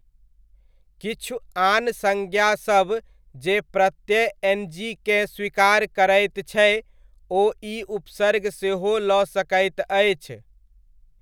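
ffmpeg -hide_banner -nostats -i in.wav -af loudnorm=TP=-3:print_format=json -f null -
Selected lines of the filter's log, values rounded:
"input_i" : "-21.7",
"input_tp" : "-4.3",
"input_lra" : "2.5",
"input_thresh" : "-32.6",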